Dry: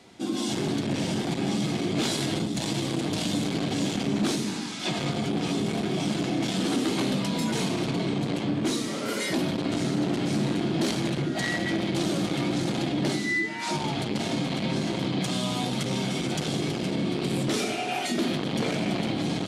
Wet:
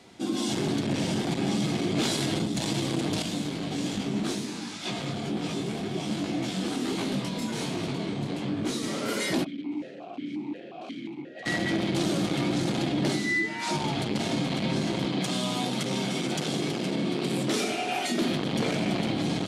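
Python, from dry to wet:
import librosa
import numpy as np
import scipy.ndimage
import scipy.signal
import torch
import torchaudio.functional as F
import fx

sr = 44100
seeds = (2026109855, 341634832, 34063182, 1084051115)

y = fx.detune_double(x, sr, cents=45, at=(3.22, 8.83))
y = fx.vowel_held(y, sr, hz=5.6, at=(9.43, 11.45), fade=0.02)
y = fx.highpass(y, sr, hz=150.0, slope=12, at=(15.05, 18.22))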